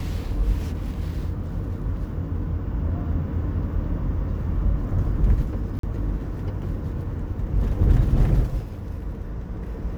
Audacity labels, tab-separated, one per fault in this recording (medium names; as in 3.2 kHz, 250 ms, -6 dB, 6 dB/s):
5.790000	5.830000	dropout 43 ms